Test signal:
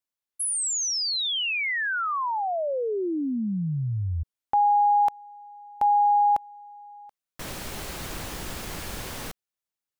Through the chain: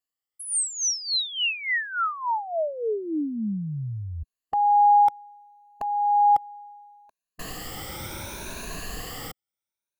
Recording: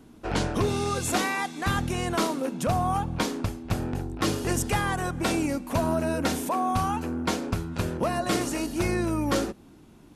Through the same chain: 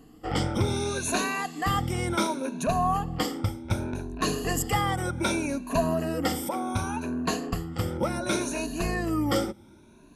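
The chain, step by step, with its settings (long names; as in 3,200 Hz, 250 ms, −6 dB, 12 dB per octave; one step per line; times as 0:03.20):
rippled gain that drifts along the octave scale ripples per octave 1.5, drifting +0.67 Hz, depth 15 dB
level −3 dB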